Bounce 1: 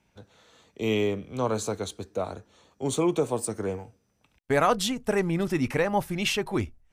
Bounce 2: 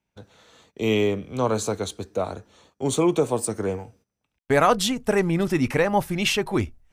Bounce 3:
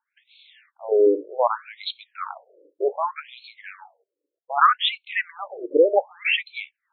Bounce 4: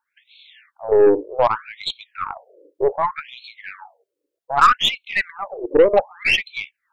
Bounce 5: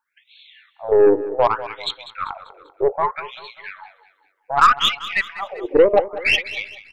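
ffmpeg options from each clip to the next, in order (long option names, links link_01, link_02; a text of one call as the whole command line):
ffmpeg -i in.wav -af "agate=range=-16dB:threshold=-59dB:ratio=16:detection=peak,volume=4dB" out.wav
ffmpeg -i in.wav -af "afftfilt=real='re*between(b*sr/1024,400*pow(3100/400,0.5+0.5*sin(2*PI*0.65*pts/sr))/1.41,400*pow(3100/400,0.5+0.5*sin(2*PI*0.65*pts/sr))*1.41)':imag='im*between(b*sr/1024,400*pow(3100/400,0.5+0.5*sin(2*PI*0.65*pts/sr))/1.41,400*pow(3100/400,0.5+0.5*sin(2*PI*0.65*pts/sr))*1.41)':win_size=1024:overlap=0.75,volume=7dB" out.wav
ffmpeg -i in.wav -af "aeval=exprs='0.631*(cos(1*acos(clip(val(0)/0.631,-1,1)))-cos(1*PI/2))+0.0355*(cos(5*acos(clip(val(0)/0.631,-1,1)))-cos(5*PI/2))+0.0316*(cos(8*acos(clip(val(0)/0.631,-1,1)))-cos(8*PI/2))':channel_layout=same,volume=2.5dB" out.wav
ffmpeg -i in.wav -af "aecho=1:1:196|392|588|784:0.178|0.0765|0.0329|0.0141" out.wav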